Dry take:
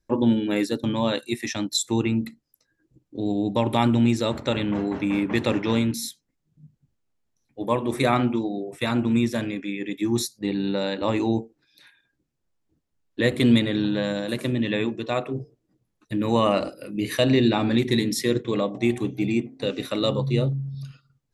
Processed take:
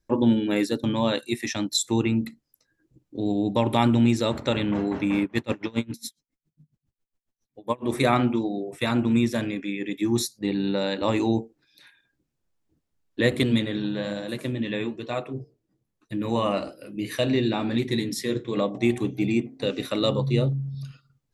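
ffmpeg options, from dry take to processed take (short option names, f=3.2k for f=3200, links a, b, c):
-filter_complex "[0:a]asettb=1/sr,asplit=3[a][b][c];[a]atrim=end=5.244[d];[b]atrim=start=5.24:end=7.86,asetpts=PTS-STARTPTS,afade=t=in:d=0.004:c=qsin,afade=t=out:st=2.616:d=0.004:c=qsin,aeval=exprs='val(0)*pow(10,-29*(0.5-0.5*cos(2*PI*7.3*n/s))/20)':c=same[e];[c]atrim=start=7.856[f];[d][e]acrossfade=d=0.004:c1=hsin:c2=qsin[g];[g][f]acrossfade=d=0.004:c1=qsin:c2=hsin,asettb=1/sr,asplit=3[h][i][j];[h]atrim=end=10.904[k];[i]atrim=start=10.9:end=11.36,asetpts=PTS-STARTPTS,afade=t=in:d=0.004:c=qsin,afade=t=out:st=0.456:d=0.004:c=qsin,highshelf=f=5.9k:g=6[l];[j]atrim=start=11.356[m];[k][l]acrossfade=d=0.004:c1=hsin:c2=qsin[n];[n][m]acrossfade=d=0.004:c1=qsin:c2=hsin,asettb=1/sr,asplit=3[o][p][q];[o]atrim=end=13.434[r];[p]atrim=start=13.43:end=18.57,asetpts=PTS-STARTPTS,afade=t=in:d=0.004:c=qsin,afade=t=out:st=5.136:d=0.004:c=qsin,flanger=delay=5.8:depth=9.2:regen=-56:speed=1.1:shape=sinusoidal[s];[q]atrim=start=18.566[t];[r][s]acrossfade=d=0.004:c1=hsin:c2=qsin[u];[u][t]acrossfade=d=0.004:c1=qsin:c2=hsin"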